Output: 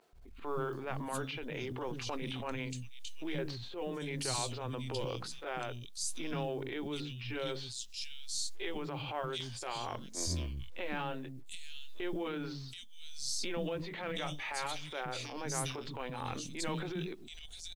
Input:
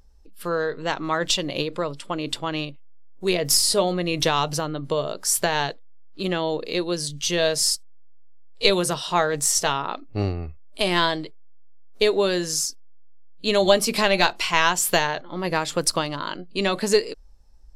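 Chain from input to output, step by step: delay-line pitch shifter -3 st; compressor 16:1, threshold -35 dBFS, peak gain reduction 24.5 dB; three bands offset in time mids, lows, highs 0.13/0.73 s, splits 250/3100 Hz; companded quantiser 8-bit; transient shaper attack -10 dB, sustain +6 dB; gain +3 dB

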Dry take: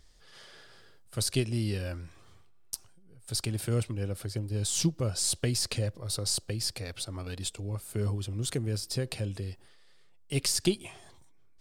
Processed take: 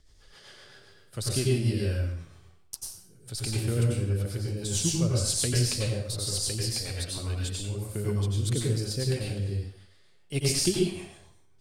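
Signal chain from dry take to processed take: rotary speaker horn 7.5 Hz; plate-style reverb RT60 0.57 s, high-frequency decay 0.95×, pre-delay 80 ms, DRR -3 dB

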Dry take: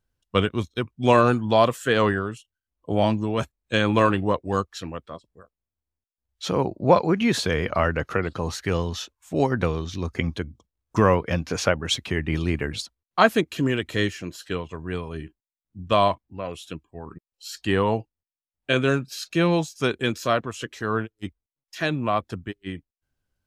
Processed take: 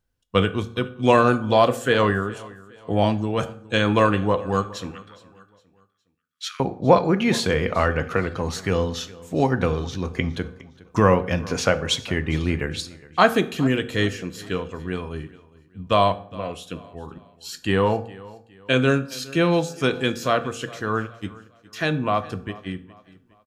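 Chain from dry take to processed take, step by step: 4.91–6.6 steep high-pass 1300 Hz 72 dB/oct; feedback echo 0.412 s, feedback 38%, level -21 dB; reverb RT60 0.55 s, pre-delay 3 ms, DRR 9.5 dB; gain +1 dB

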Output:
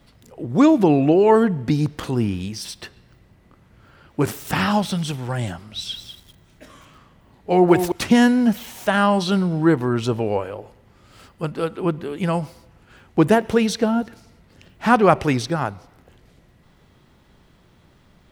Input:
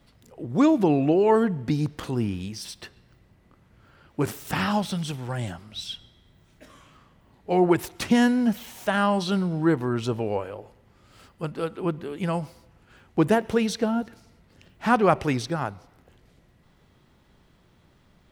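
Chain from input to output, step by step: 5.67–7.92 lo-fi delay 0.197 s, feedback 35%, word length 8-bit, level -8 dB; gain +5 dB

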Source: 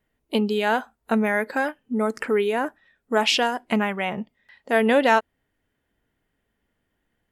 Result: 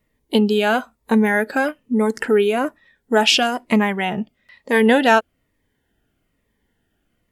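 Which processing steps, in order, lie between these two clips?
cascading phaser falling 1.1 Hz; gain +6.5 dB

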